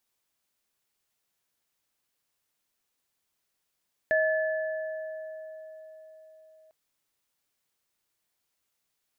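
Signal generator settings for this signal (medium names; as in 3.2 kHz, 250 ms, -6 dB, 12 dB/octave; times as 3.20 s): sine partials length 2.60 s, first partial 632 Hz, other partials 1.73 kHz, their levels -2 dB, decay 4.66 s, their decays 2.53 s, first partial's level -22 dB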